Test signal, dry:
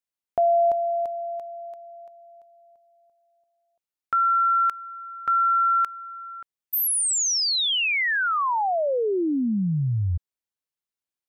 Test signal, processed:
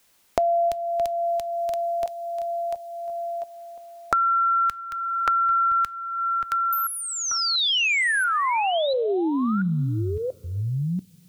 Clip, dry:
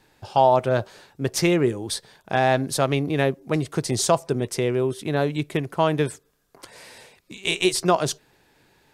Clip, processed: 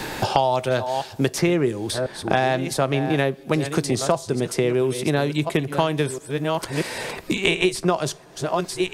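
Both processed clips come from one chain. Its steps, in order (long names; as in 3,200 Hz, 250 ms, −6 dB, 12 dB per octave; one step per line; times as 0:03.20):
delay that plays each chunk backwards 687 ms, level −13 dB
coupled-rooms reverb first 0.23 s, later 1.6 s, from −18 dB, DRR 18 dB
multiband upward and downward compressor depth 100%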